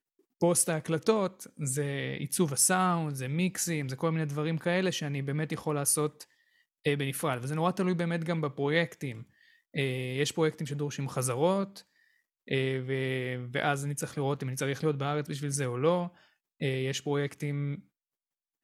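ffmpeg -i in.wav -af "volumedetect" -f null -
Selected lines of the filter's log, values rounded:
mean_volume: -31.1 dB
max_volume: -10.9 dB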